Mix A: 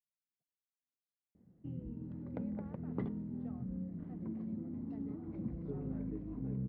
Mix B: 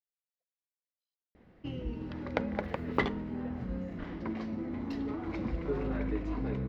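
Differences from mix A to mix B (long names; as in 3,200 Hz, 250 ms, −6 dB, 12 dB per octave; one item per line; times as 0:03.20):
speech: add formant filter e
master: remove resonant band-pass 160 Hz, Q 1.7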